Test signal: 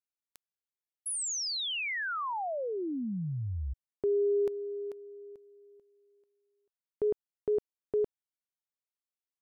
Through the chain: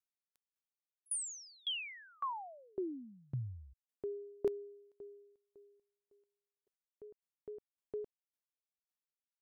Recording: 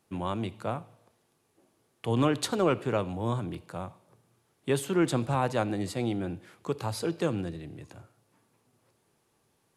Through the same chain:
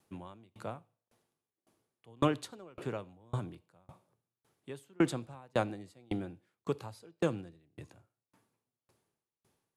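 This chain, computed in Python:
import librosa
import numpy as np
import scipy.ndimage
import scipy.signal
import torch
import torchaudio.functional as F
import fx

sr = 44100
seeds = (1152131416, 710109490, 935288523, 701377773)

y = fx.tremolo_decay(x, sr, direction='decaying', hz=1.8, depth_db=35)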